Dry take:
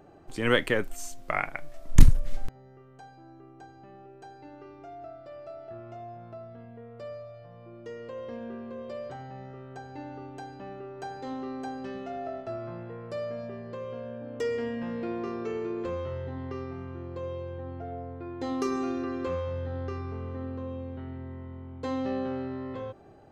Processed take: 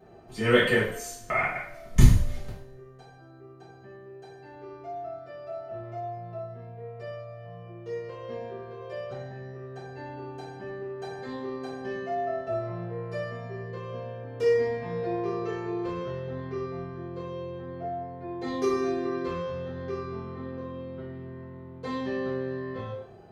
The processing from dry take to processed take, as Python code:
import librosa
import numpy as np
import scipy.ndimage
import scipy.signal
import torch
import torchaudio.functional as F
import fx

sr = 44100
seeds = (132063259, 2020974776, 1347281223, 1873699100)

y = fx.notch(x, sr, hz=7800.0, q=9.2)
y = fx.notch_comb(y, sr, f0_hz=280.0)
y = fx.rev_double_slope(y, sr, seeds[0], early_s=0.56, late_s=1.5, knee_db=-24, drr_db=-9.5)
y = y * 10.0 ** (-6.0 / 20.0)